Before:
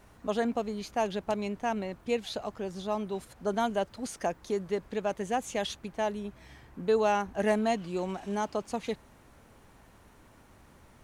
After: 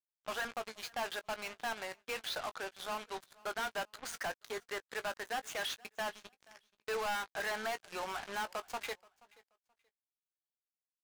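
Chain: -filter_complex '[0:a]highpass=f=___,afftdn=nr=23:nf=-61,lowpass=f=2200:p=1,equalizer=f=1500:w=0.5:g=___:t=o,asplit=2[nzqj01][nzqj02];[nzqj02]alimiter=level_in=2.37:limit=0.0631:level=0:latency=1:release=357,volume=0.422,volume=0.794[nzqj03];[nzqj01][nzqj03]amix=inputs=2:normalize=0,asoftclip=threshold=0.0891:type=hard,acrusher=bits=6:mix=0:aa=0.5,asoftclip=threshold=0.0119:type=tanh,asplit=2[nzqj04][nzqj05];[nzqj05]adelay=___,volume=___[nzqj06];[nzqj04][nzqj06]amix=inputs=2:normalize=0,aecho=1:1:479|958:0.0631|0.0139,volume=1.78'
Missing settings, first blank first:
1100, 6.5, 18, 0.251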